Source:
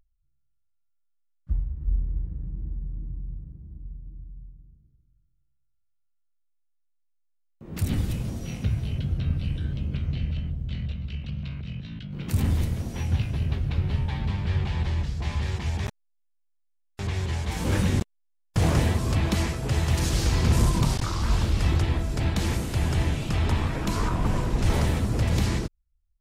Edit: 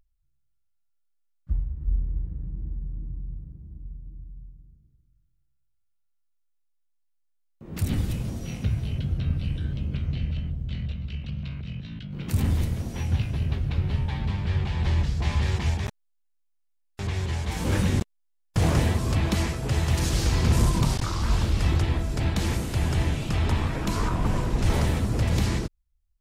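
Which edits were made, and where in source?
14.83–15.74 gain +3.5 dB

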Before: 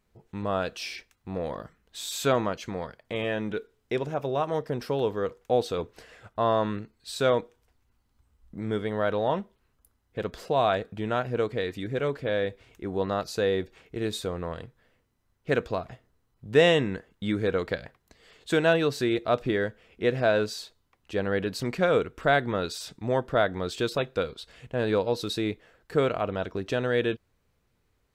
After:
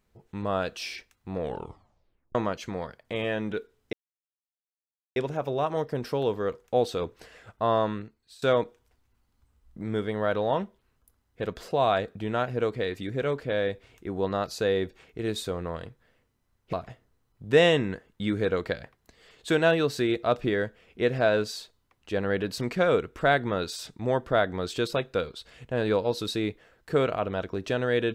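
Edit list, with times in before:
1.4 tape stop 0.95 s
3.93 insert silence 1.23 s
6.56–7.19 fade out, to -19 dB
15.5–15.75 cut

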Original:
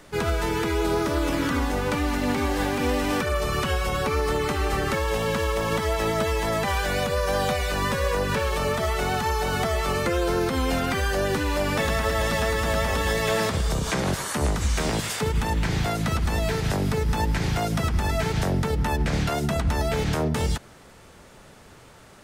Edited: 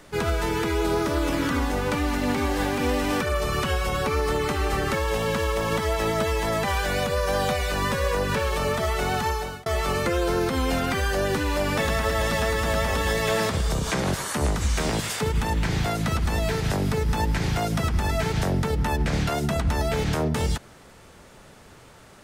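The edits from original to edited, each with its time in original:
9.27–9.66 fade out

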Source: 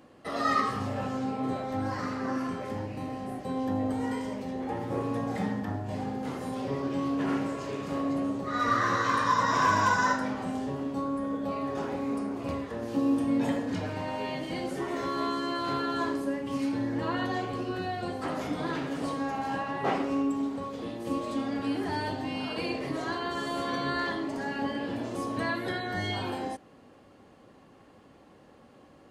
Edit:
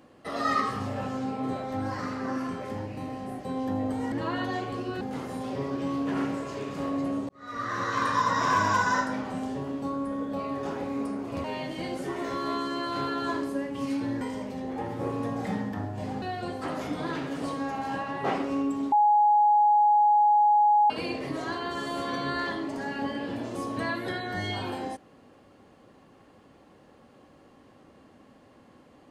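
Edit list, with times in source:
4.12–6.13 swap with 16.93–17.82
8.41–9.18 fade in linear
12.56–14.16 cut
20.52–22.5 bleep 835 Hz -17 dBFS

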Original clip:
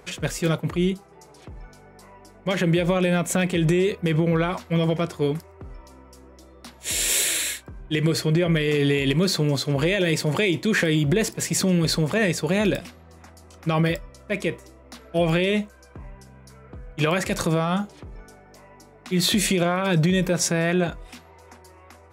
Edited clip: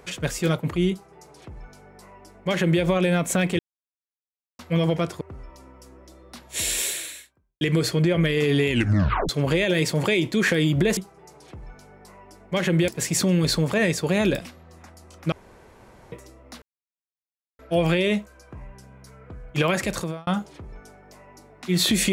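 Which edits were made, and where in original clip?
0.91–2.82 copy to 11.28
3.59–4.59 mute
5.21–5.52 cut
6.92–7.92 fade out quadratic
9.01 tape stop 0.59 s
13.72–14.52 room tone
15.02 insert silence 0.97 s
17.25–17.7 fade out

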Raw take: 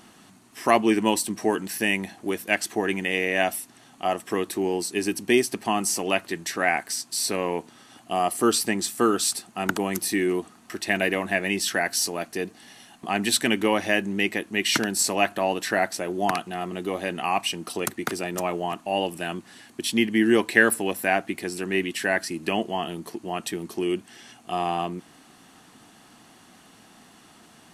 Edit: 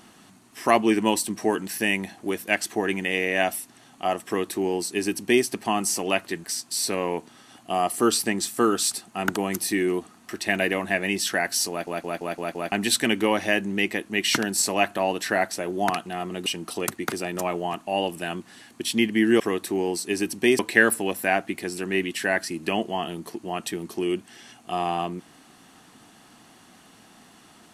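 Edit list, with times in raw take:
4.26–5.45 copy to 20.39
6.44–6.85 cut
12.11 stutter in place 0.17 s, 6 plays
16.87–17.45 cut

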